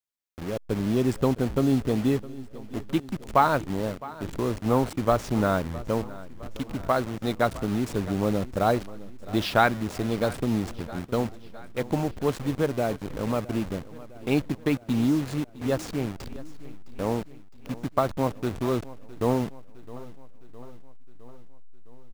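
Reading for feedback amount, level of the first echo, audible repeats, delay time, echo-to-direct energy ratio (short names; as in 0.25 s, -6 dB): 59%, -18.5 dB, 4, 0.661 s, -16.5 dB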